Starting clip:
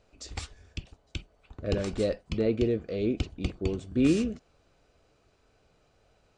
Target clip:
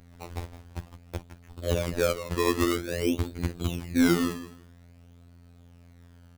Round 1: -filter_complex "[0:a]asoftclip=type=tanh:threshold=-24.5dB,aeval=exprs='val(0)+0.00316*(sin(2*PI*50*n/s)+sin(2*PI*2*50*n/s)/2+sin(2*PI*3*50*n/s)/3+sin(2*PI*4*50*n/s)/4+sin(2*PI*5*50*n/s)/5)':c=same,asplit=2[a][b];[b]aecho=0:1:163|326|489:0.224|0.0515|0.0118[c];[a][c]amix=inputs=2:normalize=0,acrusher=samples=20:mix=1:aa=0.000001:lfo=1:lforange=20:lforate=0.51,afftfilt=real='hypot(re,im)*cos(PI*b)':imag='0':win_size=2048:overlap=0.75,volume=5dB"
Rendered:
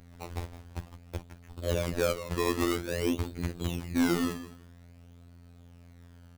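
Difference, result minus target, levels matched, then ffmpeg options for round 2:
soft clip: distortion +16 dB
-filter_complex "[0:a]asoftclip=type=tanh:threshold=-12.5dB,aeval=exprs='val(0)+0.00316*(sin(2*PI*50*n/s)+sin(2*PI*2*50*n/s)/2+sin(2*PI*3*50*n/s)/3+sin(2*PI*4*50*n/s)/4+sin(2*PI*5*50*n/s)/5)':c=same,asplit=2[a][b];[b]aecho=0:1:163|326|489:0.224|0.0515|0.0118[c];[a][c]amix=inputs=2:normalize=0,acrusher=samples=20:mix=1:aa=0.000001:lfo=1:lforange=20:lforate=0.51,afftfilt=real='hypot(re,im)*cos(PI*b)':imag='0':win_size=2048:overlap=0.75,volume=5dB"

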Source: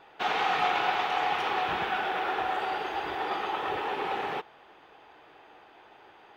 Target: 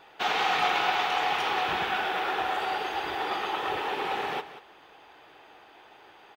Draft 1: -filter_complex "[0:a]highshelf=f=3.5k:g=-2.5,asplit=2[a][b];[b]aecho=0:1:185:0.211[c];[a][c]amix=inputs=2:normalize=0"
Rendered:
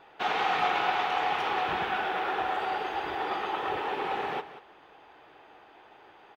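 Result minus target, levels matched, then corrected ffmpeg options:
8000 Hz band -7.0 dB
-filter_complex "[0:a]highshelf=f=3.5k:g=8.5,asplit=2[a][b];[b]aecho=0:1:185:0.211[c];[a][c]amix=inputs=2:normalize=0"

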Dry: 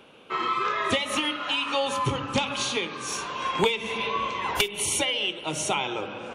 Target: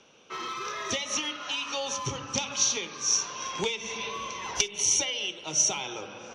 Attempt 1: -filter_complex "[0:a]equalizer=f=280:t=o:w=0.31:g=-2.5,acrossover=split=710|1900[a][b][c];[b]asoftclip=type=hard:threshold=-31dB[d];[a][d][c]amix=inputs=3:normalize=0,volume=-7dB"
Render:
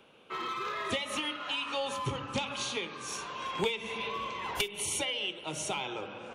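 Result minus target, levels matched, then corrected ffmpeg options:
8000 Hz band -8.0 dB
-filter_complex "[0:a]lowpass=f=5.9k:t=q:w=14,equalizer=f=280:t=o:w=0.31:g=-2.5,acrossover=split=710|1900[a][b][c];[b]asoftclip=type=hard:threshold=-31dB[d];[a][d][c]amix=inputs=3:normalize=0,volume=-7dB"

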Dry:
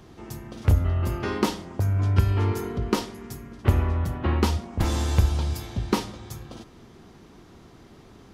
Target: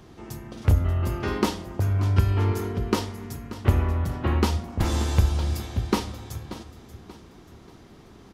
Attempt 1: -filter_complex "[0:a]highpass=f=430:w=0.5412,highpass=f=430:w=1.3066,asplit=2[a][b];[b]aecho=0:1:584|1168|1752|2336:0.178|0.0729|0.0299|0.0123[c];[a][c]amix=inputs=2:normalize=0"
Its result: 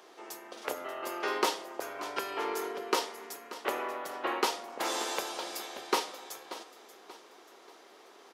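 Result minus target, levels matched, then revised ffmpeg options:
500 Hz band +6.0 dB
-filter_complex "[0:a]asplit=2[a][b];[b]aecho=0:1:584|1168|1752|2336:0.178|0.0729|0.0299|0.0123[c];[a][c]amix=inputs=2:normalize=0"

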